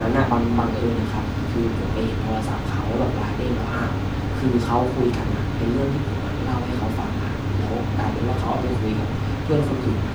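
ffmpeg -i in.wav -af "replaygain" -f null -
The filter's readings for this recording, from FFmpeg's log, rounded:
track_gain = +4.2 dB
track_peak = 0.367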